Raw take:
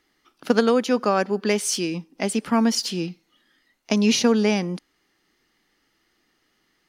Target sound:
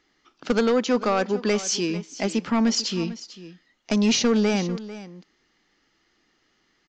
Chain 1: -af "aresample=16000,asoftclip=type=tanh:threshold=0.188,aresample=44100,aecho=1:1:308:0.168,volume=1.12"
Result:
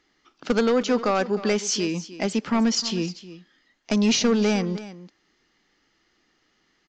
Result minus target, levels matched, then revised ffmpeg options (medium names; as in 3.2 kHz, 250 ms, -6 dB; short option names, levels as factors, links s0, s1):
echo 138 ms early
-af "aresample=16000,asoftclip=type=tanh:threshold=0.188,aresample=44100,aecho=1:1:446:0.168,volume=1.12"